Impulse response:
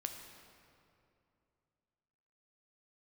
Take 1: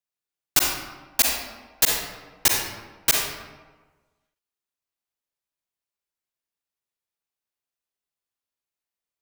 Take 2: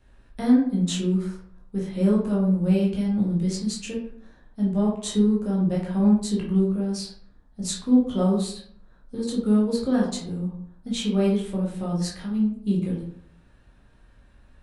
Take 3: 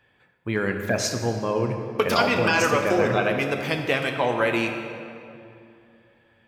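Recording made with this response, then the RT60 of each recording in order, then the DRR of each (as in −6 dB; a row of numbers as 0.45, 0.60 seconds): 3; 1.3, 0.60, 2.7 seconds; −1.0, −4.5, 4.0 decibels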